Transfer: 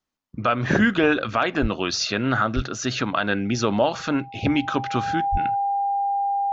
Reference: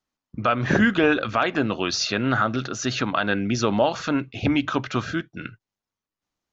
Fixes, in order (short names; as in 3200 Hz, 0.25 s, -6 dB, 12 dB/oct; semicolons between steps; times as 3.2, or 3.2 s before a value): notch 800 Hz, Q 30; de-plosive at 1.61/2.55/5.31